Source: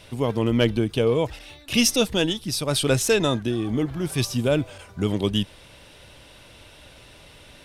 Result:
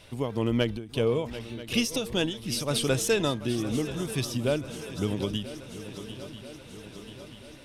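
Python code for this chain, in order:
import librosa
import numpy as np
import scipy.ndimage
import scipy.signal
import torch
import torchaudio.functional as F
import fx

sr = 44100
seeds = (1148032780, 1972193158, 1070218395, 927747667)

y = fx.echo_swing(x, sr, ms=985, ratio=3, feedback_pct=60, wet_db=-15.0)
y = fx.end_taper(y, sr, db_per_s=120.0)
y = y * 10.0 ** (-4.5 / 20.0)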